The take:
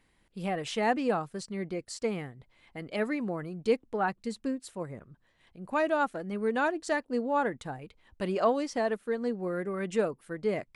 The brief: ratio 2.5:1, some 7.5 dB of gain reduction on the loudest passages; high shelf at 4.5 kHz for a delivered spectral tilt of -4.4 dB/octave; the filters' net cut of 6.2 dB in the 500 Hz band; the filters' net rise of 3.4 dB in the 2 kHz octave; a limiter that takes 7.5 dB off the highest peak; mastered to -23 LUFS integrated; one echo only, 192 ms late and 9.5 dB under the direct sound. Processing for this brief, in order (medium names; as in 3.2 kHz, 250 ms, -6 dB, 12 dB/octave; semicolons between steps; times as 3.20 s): peaking EQ 500 Hz -8 dB; peaking EQ 2 kHz +6.5 dB; treble shelf 4.5 kHz -9 dB; compression 2.5:1, threshold -35 dBFS; peak limiter -31.5 dBFS; delay 192 ms -9.5 dB; trim +18 dB